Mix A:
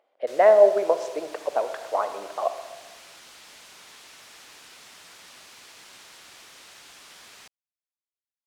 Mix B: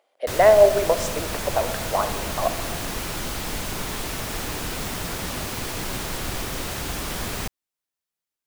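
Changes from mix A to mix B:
background: remove differentiator; master: remove tape spacing loss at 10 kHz 21 dB

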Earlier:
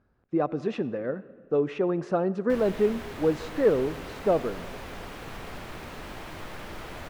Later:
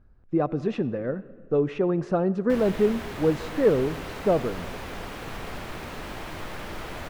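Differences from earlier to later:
speech: remove HPF 260 Hz 6 dB/oct; background +3.5 dB

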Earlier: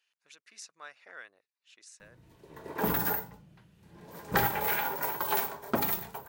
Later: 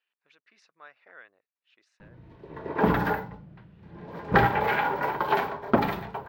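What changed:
background +9.0 dB; master: add air absorption 340 m

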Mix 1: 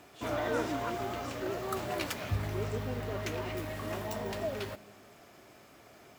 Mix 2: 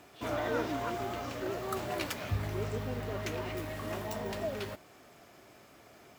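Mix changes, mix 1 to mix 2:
speech: add polynomial smoothing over 15 samples; reverb: off

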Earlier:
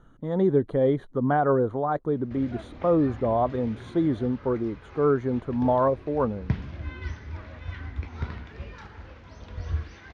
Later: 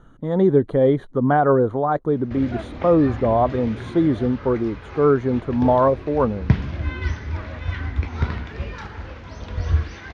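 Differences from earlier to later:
speech +5.5 dB; background +9.5 dB

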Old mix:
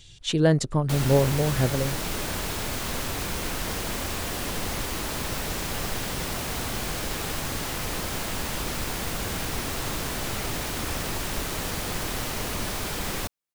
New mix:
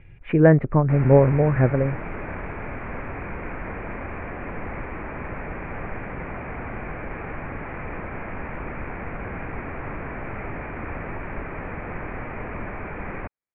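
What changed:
speech +6.0 dB; master: add Chebyshev low-pass 2400 Hz, order 6

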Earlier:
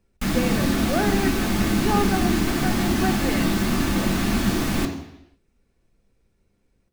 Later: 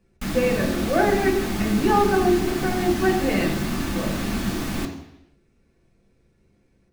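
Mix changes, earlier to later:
speech: send +11.0 dB; background -4.0 dB

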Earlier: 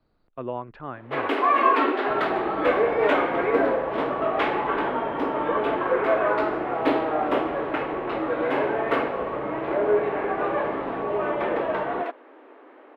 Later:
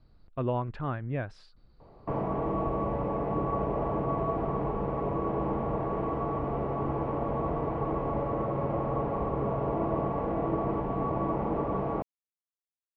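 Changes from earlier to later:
first sound: muted; master: remove three-band isolator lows -13 dB, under 230 Hz, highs -14 dB, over 4000 Hz

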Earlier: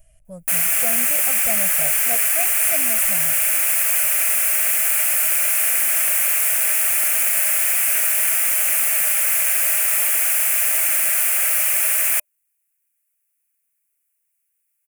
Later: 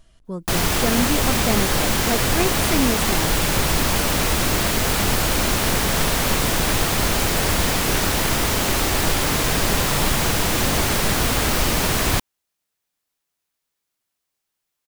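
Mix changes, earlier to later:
background: remove resonant high-pass 1300 Hz, resonance Q 1.9; master: remove EQ curve 130 Hz 0 dB, 390 Hz -27 dB, 600 Hz +5 dB, 1000 Hz -18 dB, 2500 Hz +1 dB, 3800 Hz -19 dB, 9600 Hz +10 dB

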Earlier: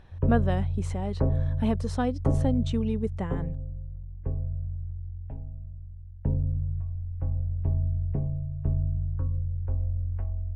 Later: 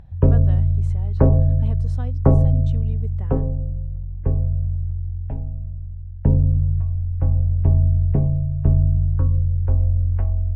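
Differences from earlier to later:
speech -10.0 dB; background +10.5 dB

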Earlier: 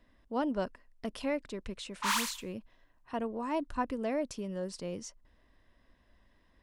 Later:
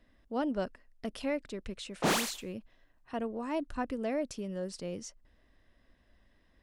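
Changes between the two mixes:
background: remove brick-wall FIR high-pass 860 Hz; master: add bell 1000 Hz -6.5 dB 0.26 oct

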